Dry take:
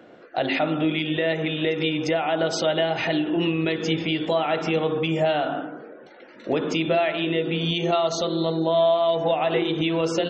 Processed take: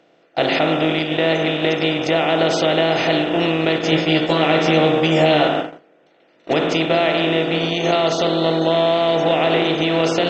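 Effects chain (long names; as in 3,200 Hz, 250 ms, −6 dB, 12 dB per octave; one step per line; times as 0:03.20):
compressor on every frequency bin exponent 0.4
noise gate −18 dBFS, range −30 dB
0:03.91–0:05.48: double-tracking delay 13 ms −2.5 dB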